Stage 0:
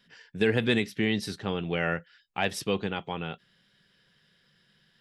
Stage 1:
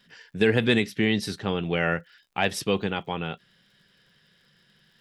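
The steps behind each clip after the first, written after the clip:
surface crackle 65 per second −58 dBFS
level +3.5 dB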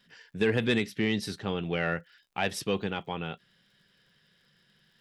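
soft clipping −9.5 dBFS, distortion −23 dB
level −4 dB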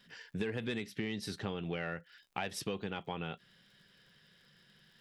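downward compressor 6 to 1, threshold −36 dBFS, peak gain reduction 14 dB
level +1.5 dB

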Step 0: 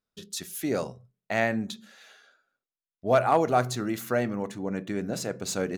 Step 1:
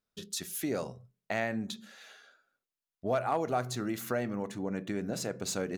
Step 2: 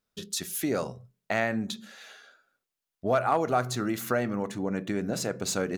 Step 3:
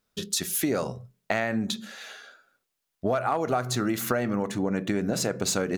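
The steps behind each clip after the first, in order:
downward compressor 2 to 1, threshold −33 dBFS, peak gain reduction 9.5 dB
dynamic equaliser 1,300 Hz, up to +4 dB, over −48 dBFS, Q 2.6; level +4.5 dB
downward compressor, threshold −28 dBFS, peak gain reduction 8.5 dB; level +6 dB

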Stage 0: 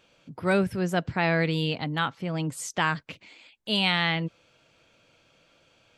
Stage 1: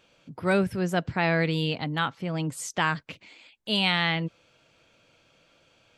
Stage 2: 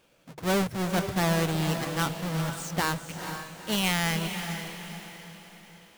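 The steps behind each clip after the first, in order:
no processing that can be heard
each half-wave held at its own peak; mains-hum notches 50/100/150 Hz; feedback delay with all-pass diffusion 466 ms, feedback 46%, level −7.5 dB; level −6 dB

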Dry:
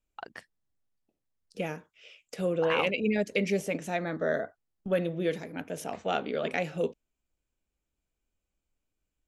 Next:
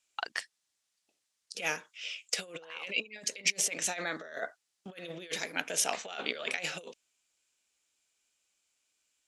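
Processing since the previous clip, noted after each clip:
compressor whose output falls as the input rises −34 dBFS, ratio −0.5
meter weighting curve ITU-R 468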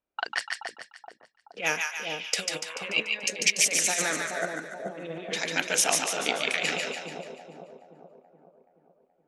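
low-pass that shuts in the quiet parts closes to 750 Hz, open at −30.5 dBFS
echo with a time of its own for lows and highs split 860 Hz, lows 426 ms, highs 145 ms, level −3 dB
level +5.5 dB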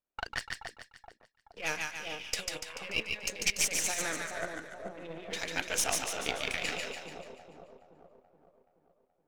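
gain on one half-wave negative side −7 dB
level −4 dB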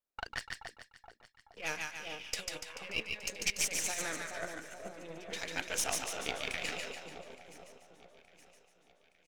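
repeating echo 869 ms, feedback 52%, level −21.5 dB
level −3.5 dB

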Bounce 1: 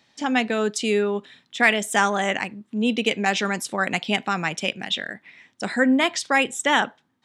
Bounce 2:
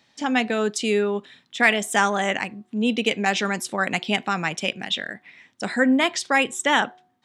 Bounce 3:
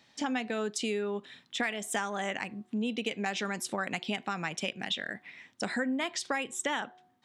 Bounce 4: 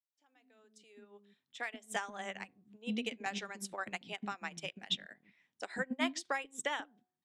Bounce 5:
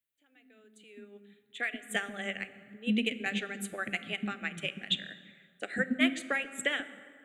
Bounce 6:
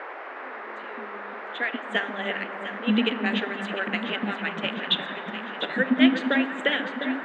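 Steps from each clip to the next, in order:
hum removal 365.9 Hz, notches 3
downward compressor 6 to 1, threshold −28 dBFS, peak gain reduction 15 dB; level −1.5 dB
fade in at the beginning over 2.05 s; multiband delay without the direct sound highs, lows 140 ms, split 330 Hz; expander for the loud parts 2.5 to 1, over −42 dBFS
phaser with its sweep stopped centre 2,300 Hz, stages 4; dense smooth reverb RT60 2.2 s, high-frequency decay 0.55×, DRR 12.5 dB; level +8.5 dB
loudspeaker in its box 220–4,400 Hz, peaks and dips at 270 Hz +5 dB, 1,200 Hz −7 dB, 2,300 Hz −7 dB; noise in a band 360–1,900 Hz −46 dBFS; delay that swaps between a low-pass and a high-pass 351 ms, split 1,800 Hz, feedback 80%, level −8 dB; level +8 dB

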